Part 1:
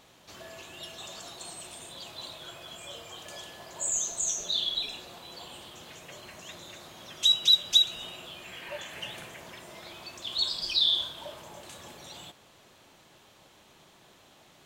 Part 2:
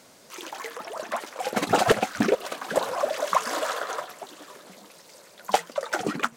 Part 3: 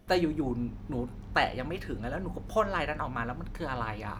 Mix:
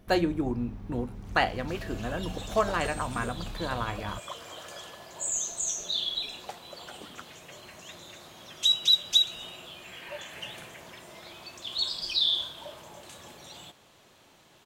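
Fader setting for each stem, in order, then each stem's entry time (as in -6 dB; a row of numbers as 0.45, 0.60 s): -1.0, -19.5, +1.5 dB; 1.40, 0.95, 0.00 s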